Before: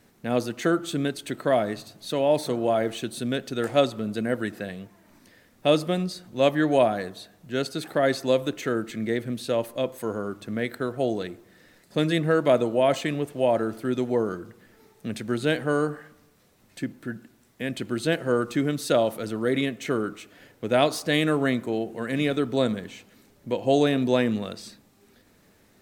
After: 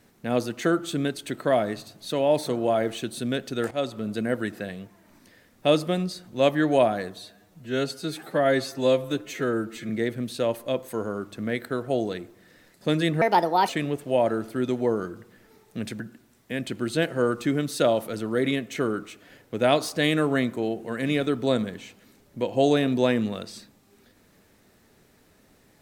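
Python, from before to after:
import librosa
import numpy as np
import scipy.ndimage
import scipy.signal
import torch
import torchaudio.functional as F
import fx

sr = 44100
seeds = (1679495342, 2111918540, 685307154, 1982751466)

y = fx.edit(x, sr, fx.fade_in_from(start_s=3.71, length_s=0.5, curve='qsin', floor_db=-13.0),
    fx.stretch_span(start_s=7.18, length_s=1.81, factor=1.5),
    fx.speed_span(start_s=12.31, length_s=0.67, speed=1.41),
    fx.cut(start_s=15.29, length_s=1.81), tone=tone)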